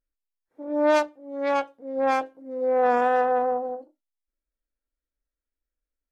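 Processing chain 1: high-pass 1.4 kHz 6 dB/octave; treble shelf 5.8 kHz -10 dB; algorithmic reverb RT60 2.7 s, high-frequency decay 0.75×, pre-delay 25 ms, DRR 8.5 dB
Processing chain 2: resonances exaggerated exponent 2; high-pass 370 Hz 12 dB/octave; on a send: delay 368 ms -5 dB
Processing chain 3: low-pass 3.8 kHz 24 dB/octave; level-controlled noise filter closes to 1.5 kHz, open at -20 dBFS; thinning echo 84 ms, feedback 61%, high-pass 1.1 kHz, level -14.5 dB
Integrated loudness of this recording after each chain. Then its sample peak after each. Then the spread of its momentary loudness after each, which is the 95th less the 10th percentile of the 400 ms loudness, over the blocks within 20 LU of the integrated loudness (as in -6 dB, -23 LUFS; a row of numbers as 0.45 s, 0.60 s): -31.5 LUFS, -24.5 LUFS, -24.5 LUFS; -15.0 dBFS, -11.5 dBFS, -10.0 dBFS; 15 LU, 11 LU, 13 LU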